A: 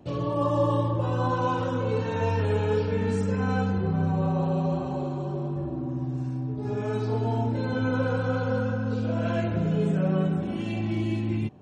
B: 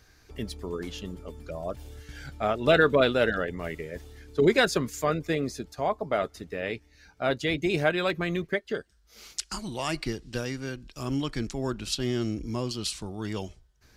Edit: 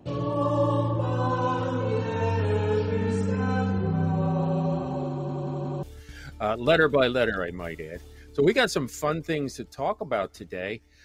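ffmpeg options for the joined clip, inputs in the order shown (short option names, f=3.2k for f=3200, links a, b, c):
-filter_complex "[0:a]apad=whole_dur=11.04,atrim=end=11.04,asplit=4[a][b][c][d];[a]atrim=end=5.292[e];[b]atrim=start=5.108:end=5.292[f];[c]atrim=start=5.108:end=5.292[g];[d]atrim=start=5.108:end=5.292[h];[1:a]atrim=start=1.828:end=7.04[i];[e][f]acrossfade=d=0.004:c1=hsin:c2=hsin[j];[j][g]acrossfade=d=0.004:c1=hsin:c2=hsin[k];[k][h]acrossfade=d=0.004:c1=hsin:c2=hsin[l];[l][i]acrossfade=d=0.004:c1=hsin:c2=hsin"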